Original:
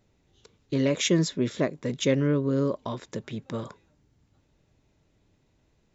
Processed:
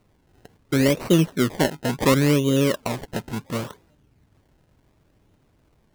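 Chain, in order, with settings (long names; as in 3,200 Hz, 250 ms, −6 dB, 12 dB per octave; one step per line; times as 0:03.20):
0:00.91–0:01.50: running median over 25 samples
0:02.66–0:03.22: high-shelf EQ 2,600 Hz +10 dB
sample-and-hold swept by an LFO 26×, swing 100% 0.7 Hz
level +5.5 dB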